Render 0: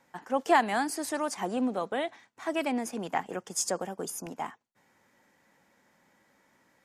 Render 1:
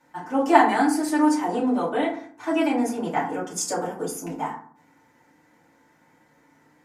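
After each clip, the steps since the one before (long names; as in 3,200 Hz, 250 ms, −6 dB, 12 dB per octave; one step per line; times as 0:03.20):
feedback delay network reverb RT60 0.51 s, low-frequency decay 1.35×, high-frequency decay 0.45×, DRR −8.5 dB
level −3.5 dB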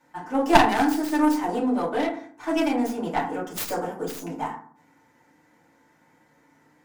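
stylus tracing distortion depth 0.33 ms
level −1 dB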